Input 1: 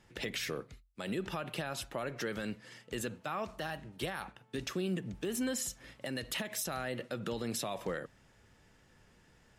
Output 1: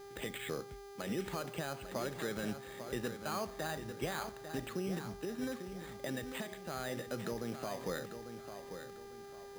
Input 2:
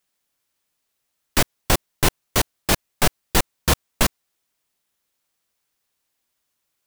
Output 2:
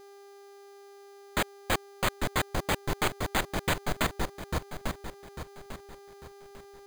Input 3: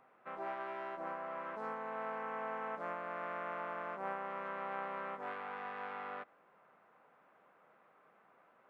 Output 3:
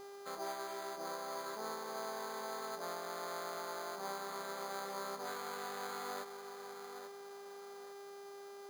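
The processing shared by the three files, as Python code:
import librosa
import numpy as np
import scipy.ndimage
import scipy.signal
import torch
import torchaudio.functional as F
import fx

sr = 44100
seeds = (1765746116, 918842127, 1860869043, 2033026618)

y = fx.rider(x, sr, range_db=4, speed_s=0.5)
y = fx.echo_wet_lowpass(y, sr, ms=847, feedback_pct=34, hz=3100.0, wet_db=-9.0)
y = fx.dmg_buzz(y, sr, base_hz=400.0, harmonics=32, level_db=-49.0, tilt_db=-8, odd_only=False)
y = (np.mod(10.0 ** (12.0 / 20.0) * y + 1.0, 2.0) - 1.0) / 10.0 ** (12.0 / 20.0)
y = np.repeat(scipy.signal.resample_poly(y, 1, 8), 8)[:len(y)]
y = y * librosa.db_to_amplitude(-2.0)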